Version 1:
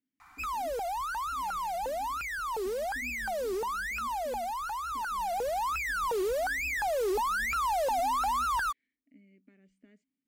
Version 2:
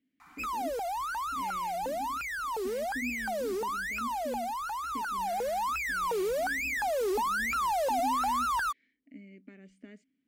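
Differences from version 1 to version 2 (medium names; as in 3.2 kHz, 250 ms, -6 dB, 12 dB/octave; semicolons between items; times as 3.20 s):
speech +11.0 dB; master: add bass shelf 100 Hz -6.5 dB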